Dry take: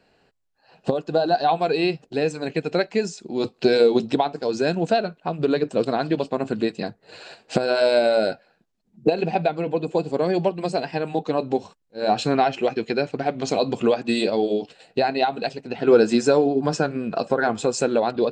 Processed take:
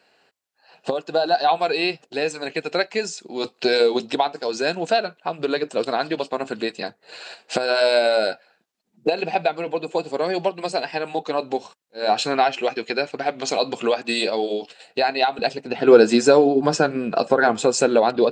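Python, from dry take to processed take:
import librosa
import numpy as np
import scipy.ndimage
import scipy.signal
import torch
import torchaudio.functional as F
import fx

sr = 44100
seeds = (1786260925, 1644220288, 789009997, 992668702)

y = fx.highpass(x, sr, hz=fx.steps((0.0, 850.0), (15.39, 260.0)), slope=6)
y = F.gain(torch.from_numpy(y), 5.0).numpy()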